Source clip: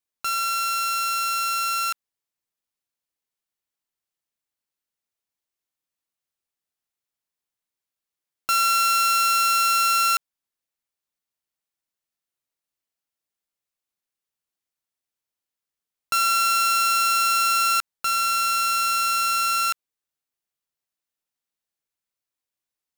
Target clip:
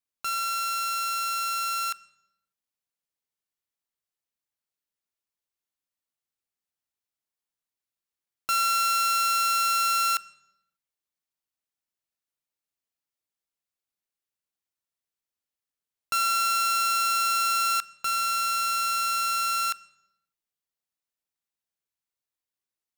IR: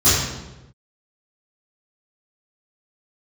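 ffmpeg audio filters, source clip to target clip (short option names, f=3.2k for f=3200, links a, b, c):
-filter_complex "[0:a]asplit=2[a][b];[1:a]atrim=start_sample=2205,asetrate=48510,aresample=44100[c];[b][c]afir=irnorm=-1:irlink=0,volume=-40dB[d];[a][d]amix=inputs=2:normalize=0,volume=-4dB"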